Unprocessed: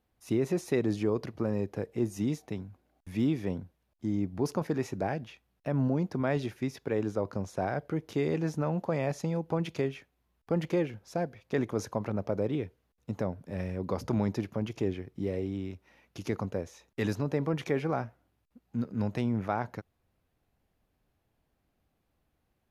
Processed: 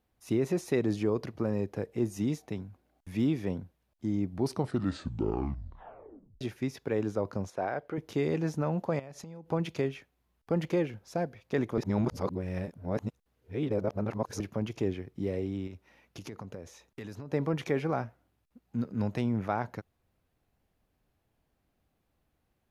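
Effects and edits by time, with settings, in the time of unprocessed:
4.31 s: tape stop 2.10 s
7.50–7.98 s: tone controls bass -11 dB, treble -9 dB
8.99–9.51 s: compression 16:1, threshold -40 dBFS
11.78–14.40 s: reverse
15.67–17.33 s: compression, threshold -38 dBFS

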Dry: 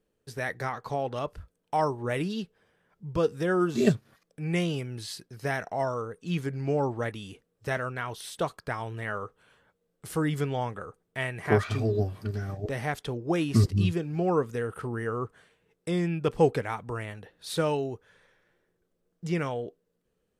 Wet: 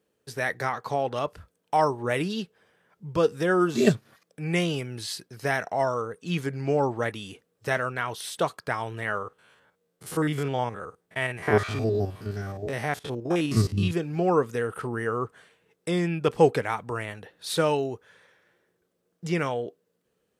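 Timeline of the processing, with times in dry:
9.18–13.91 s: spectrogram pixelated in time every 50 ms
whole clip: high-pass 79 Hz; bass shelf 330 Hz -5 dB; trim +5 dB

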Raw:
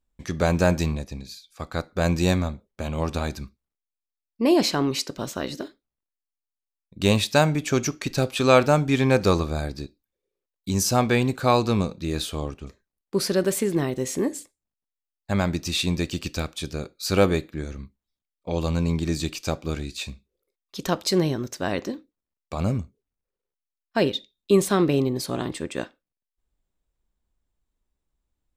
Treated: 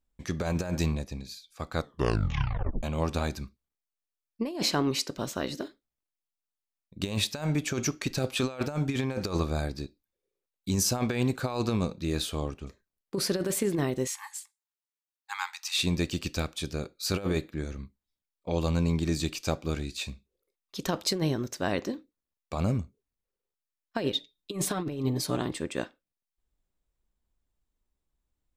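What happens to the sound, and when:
1.76 s: tape stop 1.07 s
14.07–15.78 s: brick-wall FIR high-pass 780 Hz
24.12–25.37 s: comb 6.7 ms, depth 66%
whole clip: compressor with a negative ratio -22 dBFS, ratio -0.5; trim -4.5 dB

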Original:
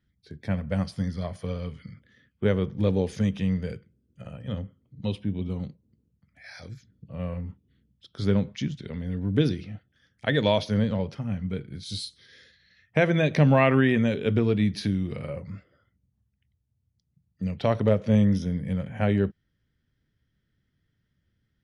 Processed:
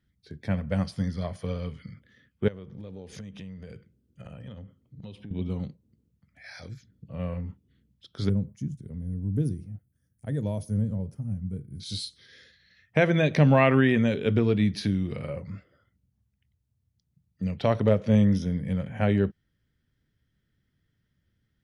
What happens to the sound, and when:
2.48–5.31 s: compression 8:1, threshold -38 dBFS
8.29–11.80 s: FFT filter 120 Hz 0 dB, 3.8 kHz -28 dB, 9.3 kHz +7 dB

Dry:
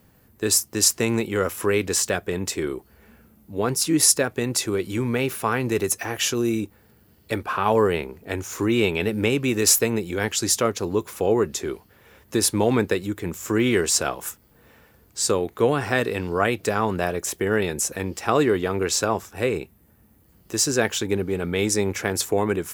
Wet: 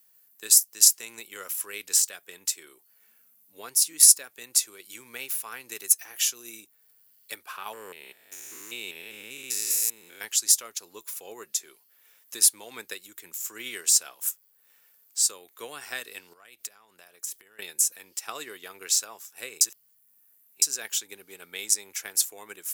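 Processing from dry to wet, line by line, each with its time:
7.73–10.21 s: spectrogram pixelated in time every 200 ms
16.33–17.59 s: compression 16:1, threshold -31 dBFS
19.61–20.62 s: reverse
whole clip: high-pass 92 Hz; differentiator; transient shaper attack +3 dB, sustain -3 dB

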